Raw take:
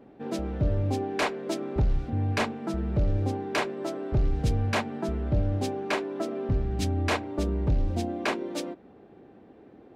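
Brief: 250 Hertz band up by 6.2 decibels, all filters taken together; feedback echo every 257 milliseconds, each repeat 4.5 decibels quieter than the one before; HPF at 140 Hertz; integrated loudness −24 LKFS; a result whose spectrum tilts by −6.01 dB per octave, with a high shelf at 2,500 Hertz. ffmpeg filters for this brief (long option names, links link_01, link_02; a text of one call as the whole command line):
ffmpeg -i in.wav -af "highpass=140,equalizer=frequency=250:width_type=o:gain=8.5,highshelf=frequency=2500:gain=-3,aecho=1:1:257|514|771|1028|1285|1542|1799|2056|2313:0.596|0.357|0.214|0.129|0.0772|0.0463|0.0278|0.0167|0.01,volume=2.5dB" out.wav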